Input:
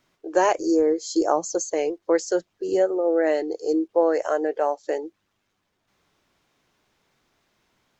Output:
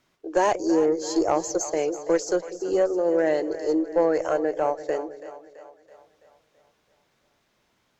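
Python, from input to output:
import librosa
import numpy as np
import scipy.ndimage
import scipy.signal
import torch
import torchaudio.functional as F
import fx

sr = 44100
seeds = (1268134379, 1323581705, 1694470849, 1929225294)

y = fx.tube_stage(x, sr, drive_db=10.0, bias=0.25)
y = fx.echo_split(y, sr, split_hz=510.0, low_ms=192, high_ms=331, feedback_pct=52, wet_db=-13)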